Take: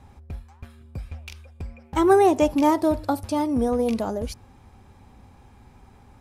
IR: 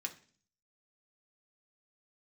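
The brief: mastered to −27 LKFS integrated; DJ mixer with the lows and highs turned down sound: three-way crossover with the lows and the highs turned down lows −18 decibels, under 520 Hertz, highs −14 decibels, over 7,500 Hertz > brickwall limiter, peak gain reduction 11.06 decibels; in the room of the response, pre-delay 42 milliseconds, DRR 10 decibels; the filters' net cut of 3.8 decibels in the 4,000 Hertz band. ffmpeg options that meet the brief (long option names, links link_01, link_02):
-filter_complex "[0:a]equalizer=frequency=4000:width_type=o:gain=-4.5,asplit=2[link_01][link_02];[1:a]atrim=start_sample=2205,adelay=42[link_03];[link_02][link_03]afir=irnorm=-1:irlink=0,volume=-9.5dB[link_04];[link_01][link_04]amix=inputs=2:normalize=0,acrossover=split=520 7500:gain=0.126 1 0.2[link_05][link_06][link_07];[link_05][link_06][link_07]amix=inputs=3:normalize=0,volume=4.5dB,alimiter=limit=-16.5dB:level=0:latency=1"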